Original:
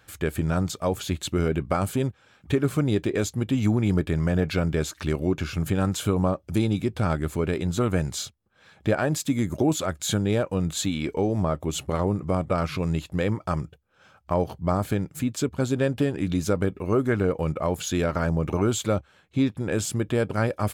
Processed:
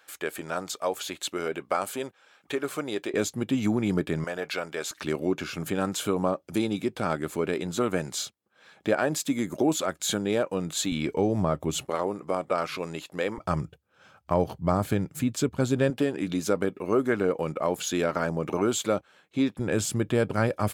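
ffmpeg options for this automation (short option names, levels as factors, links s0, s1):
-af "asetnsamples=n=441:p=0,asendcmd='3.14 highpass f 190;4.24 highpass f 580;4.91 highpass f 240;10.92 highpass f 110;11.85 highpass f 370;13.38 highpass f 90;15.9 highpass f 230;19.59 highpass f 97',highpass=470"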